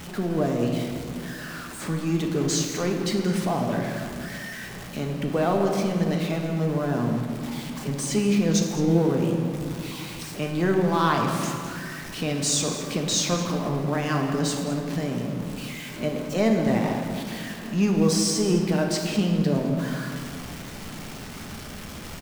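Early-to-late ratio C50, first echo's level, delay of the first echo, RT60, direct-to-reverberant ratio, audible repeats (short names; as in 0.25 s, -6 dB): 3.5 dB, -14.0 dB, 0.211 s, 2.3 s, 1.5 dB, 1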